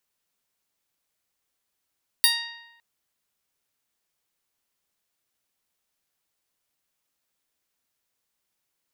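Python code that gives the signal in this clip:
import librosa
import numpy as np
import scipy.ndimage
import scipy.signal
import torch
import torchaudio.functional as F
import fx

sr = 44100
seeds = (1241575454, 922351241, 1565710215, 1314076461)

y = fx.pluck(sr, length_s=0.56, note=82, decay_s=1.07, pick=0.12, brightness='bright')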